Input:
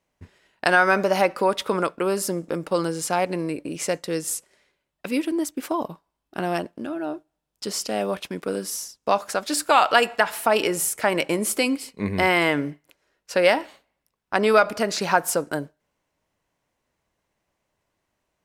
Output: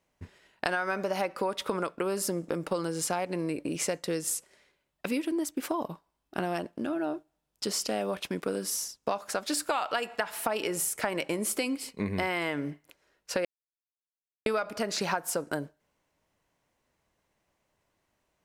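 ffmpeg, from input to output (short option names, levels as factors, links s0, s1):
-filter_complex "[0:a]asplit=3[s0][s1][s2];[s0]atrim=end=13.45,asetpts=PTS-STARTPTS,afade=t=out:st=13.446:d=0.004:c=hsin[s3];[s1]atrim=start=13.45:end=14.46,asetpts=PTS-STARTPTS,volume=0[s4];[s2]atrim=start=14.46,asetpts=PTS-STARTPTS,afade=t=in:d=0.004:c=hsin[s5];[s3][s4][s5]concat=n=3:v=0:a=1,acompressor=threshold=0.0447:ratio=6"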